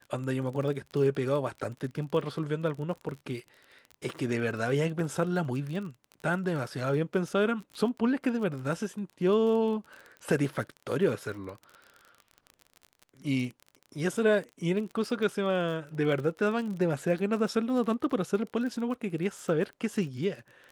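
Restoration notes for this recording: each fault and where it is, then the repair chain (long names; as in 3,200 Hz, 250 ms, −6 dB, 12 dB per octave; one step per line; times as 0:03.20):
surface crackle 29 per second −36 dBFS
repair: click removal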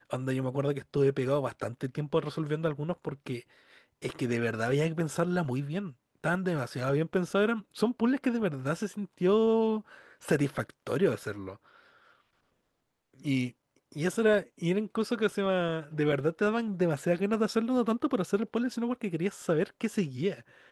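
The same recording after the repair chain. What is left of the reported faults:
none of them is left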